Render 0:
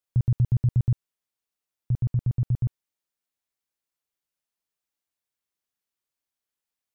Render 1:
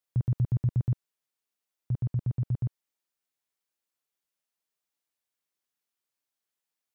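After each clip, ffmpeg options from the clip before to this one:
-af "highpass=f=160:p=1"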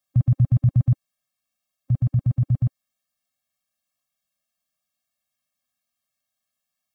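-af "afftfilt=real='re*eq(mod(floor(b*sr/1024/260),2),0)':imag='im*eq(mod(floor(b*sr/1024/260),2),0)':win_size=1024:overlap=0.75,volume=8.5dB"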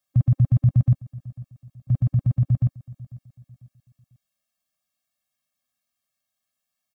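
-af "aecho=1:1:496|992|1488:0.0944|0.0359|0.0136"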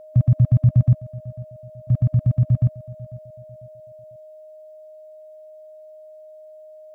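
-af "aeval=exprs='val(0)+0.00708*sin(2*PI*620*n/s)':c=same,volume=2.5dB"

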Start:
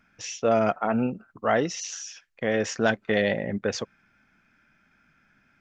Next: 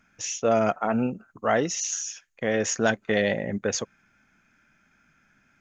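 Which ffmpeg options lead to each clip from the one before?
-af "equalizer=f=6.6k:w=6.4:g=13.5"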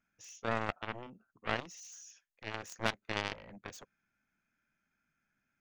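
-af "aeval=exprs='0.422*(cos(1*acos(clip(val(0)/0.422,-1,1)))-cos(1*PI/2))+0.119*(cos(3*acos(clip(val(0)/0.422,-1,1)))-cos(3*PI/2))+0.0211*(cos(7*acos(clip(val(0)/0.422,-1,1)))-cos(7*PI/2))':c=same,volume=-4.5dB"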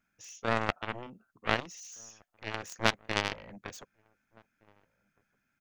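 -filter_complex "[0:a]asplit=2[a][b];[b]acrusher=bits=2:mix=0:aa=0.5,volume=-6dB[c];[a][c]amix=inputs=2:normalize=0,asplit=2[d][e];[e]adelay=1516,volume=-29dB,highshelf=f=4k:g=-34.1[f];[d][f]amix=inputs=2:normalize=0,volume=3.5dB"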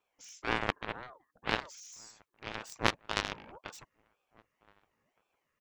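-af "aeval=exprs='val(0)*sin(2*PI*650*n/s+650*0.55/1.9*sin(2*PI*1.9*n/s))':c=same"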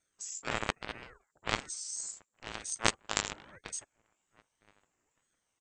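-af "lowpass=f=7.4k:t=q:w=15,aeval=exprs='val(0)*sin(2*PI*600*n/s+600*0.8/1.1*sin(2*PI*1.1*n/s))':c=same"

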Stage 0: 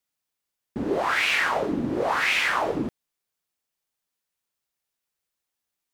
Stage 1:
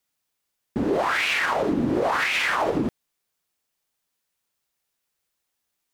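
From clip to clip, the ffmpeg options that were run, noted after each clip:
-af "alimiter=limit=-19.5dB:level=0:latency=1:release=53,volume=5dB"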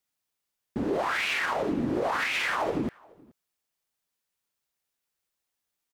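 -filter_complex "[0:a]asplit=2[a][b];[b]adelay=425.7,volume=-26dB,highshelf=f=4k:g=-9.58[c];[a][c]amix=inputs=2:normalize=0,volume=-5dB"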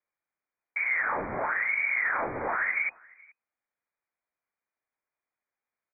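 -af "lowpass=f=2.1k:t=q:w=0.5098,lowpass=f=2.1k:t=q:w=0.6013,lowpass=f=2.1k:t=q:w=0.9,lowpass=f=2.1k:t=q:w=2.563,afreqshift=-2500"

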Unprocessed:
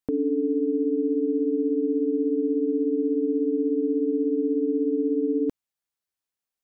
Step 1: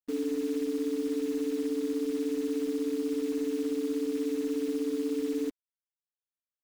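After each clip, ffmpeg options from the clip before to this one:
-af "afftfilt=real='re*gte(hypot(re,im),0.282)':imag='im*gte(hypot(re,im),0.282)':win_size=1024:overlap=0.75,acrusher=bits=7:dc=4:mix=0:aa=0.000001,volume=-6.5dB"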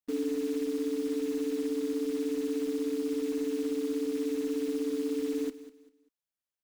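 -af "aecho=1:1:196|392|588:0.178|0.0498|0.0139"

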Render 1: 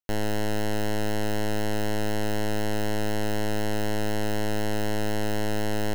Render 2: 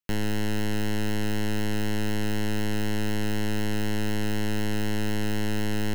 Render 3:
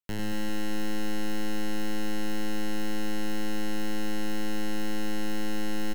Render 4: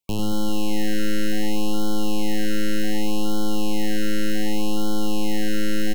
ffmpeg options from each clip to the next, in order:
-filter_complex "[0:a]equalizer=f=160:t=o:w=0.67:g=8,equalizer=f=630:t=o:w=0.67:g=-9,equalizer=f=2.5k:t=o:w=0.67:g=4,acrossover=split=440[a][b];[b]acompressor=threshold=-28dB:ratio=6[c];[a][c]amix=inputs=2:normalize=0"
-filter_complex "[0:a]asplit=2[a][b];[b]acrusher=bits=4:mode=log:mix=0:aa=0.000001,volume=-10dB[c];[a][c]amix=inputs=2:normalize=0,aecho=1:1:100|230|399|618.7|904.3:0.631|0.398|0.251|0.158|0.1,volume=-8dB"
-af "afftfilt=real='re*(1-between(b*sr/1024,910*pow(2100/910,0.5+0.5*sin(2*PI*0.66*pts/sr))/1.41,910*pow(2100/910,0.5+0.5*sin(2*PI*0.66*pts/sr))*1.41))':imag='im*(1-between(b*sr/1024,910*pow(2100/910,0.5+0.5*sin(2*PI*0.66*pts/sr))/1.41,910*pow(2100/910,0.5+0.5*sin(2*PI*0.66*pts/sr))*1.41))':win_size=1024:overlap=0.75,volume=8dB"

